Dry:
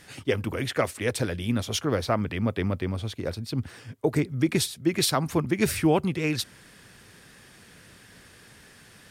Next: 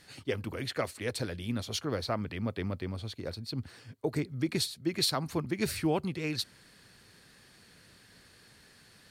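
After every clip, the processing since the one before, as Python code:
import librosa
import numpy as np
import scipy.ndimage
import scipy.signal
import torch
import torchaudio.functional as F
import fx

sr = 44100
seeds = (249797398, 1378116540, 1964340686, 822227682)

y = fx.peak_eq(x, sr, hz=4300.0, db=10.5, octaves=0.2)
y = y * librosa.db_to_amplitude(-7.5)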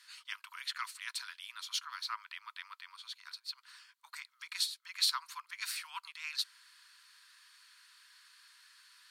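y = scipy.signal.sosfilt(scipy.signal.cheby1(6, 3, 960.0, 'highpass', fs=sr, output='sos'), x)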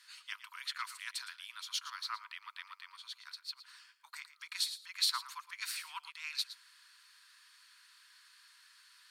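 y = x + 10.0 ** (-14.0 / 20.0) * np.pad(x, (int(113 * sr / 1000.0), 0))[:len(x)]
y = y * librosa.db_to_amplitude(-1.0)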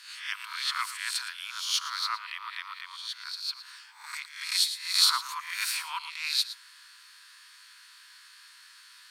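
y = fx.spec_swells(x, sr, rise_s=0.52)
y = y * librosa.db_to_amplitude(7.0)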